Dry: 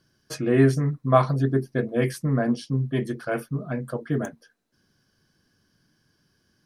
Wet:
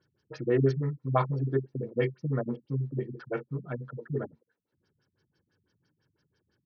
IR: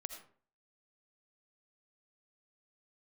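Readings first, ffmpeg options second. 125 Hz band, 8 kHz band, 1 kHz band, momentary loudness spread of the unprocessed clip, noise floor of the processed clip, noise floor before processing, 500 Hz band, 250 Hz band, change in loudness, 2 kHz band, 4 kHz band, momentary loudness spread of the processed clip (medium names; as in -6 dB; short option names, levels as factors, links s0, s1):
-5.5 dB, under -20 dB, -7.5 dB, 11 LU, -81 dBFS, -69 dBFS, -5.5 dB, -9.0 dB, -6.5 dB, -9.0 dB, under -10 dB, 11 LU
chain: -af "highpass=80,aecho=1:1:2.2:0.5,afftfilt=real='re*lt(b*sr/1024,210*pow(6700/210,0.5+0.5*sin(2*PI*6*pts/sr)))':imag='im*lt(b*sr/1024,210*pow(6700/210,0.5+0.5*sin(2*PI*6*pts/sr)))':win_size=1024:overlap=0.75,volume=0.562"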